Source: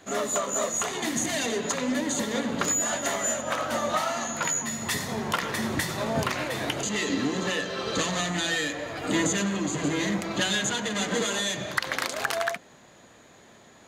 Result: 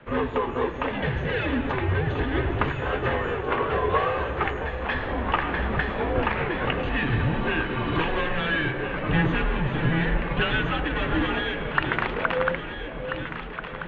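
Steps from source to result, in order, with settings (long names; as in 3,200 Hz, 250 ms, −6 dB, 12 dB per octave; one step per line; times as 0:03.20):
delay that swaps between a low-pass and a high-pass 668 ms, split 840 Hz, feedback 79%, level −7.5 dB
single-sideband voice off tune −160 Hz 160–3,000 Hz
level +3.5 dB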